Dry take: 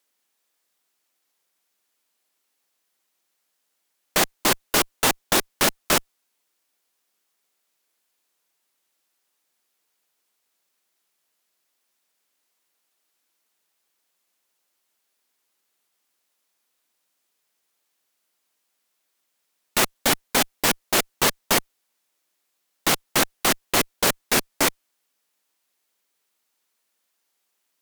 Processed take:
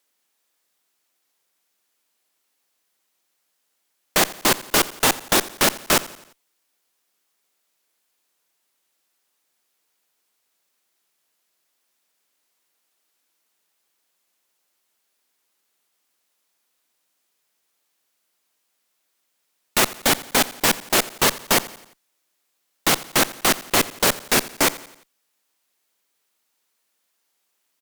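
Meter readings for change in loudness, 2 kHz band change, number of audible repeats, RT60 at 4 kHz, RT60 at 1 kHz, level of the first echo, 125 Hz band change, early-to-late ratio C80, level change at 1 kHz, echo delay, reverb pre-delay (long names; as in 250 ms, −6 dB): +2.0 dB, +2.0 dB, 3, no reverb audible, no reverb audible, −18.5 dB, +2.0 dB, no reverb audible, +2.0 dB, 87 ms, no reverb audible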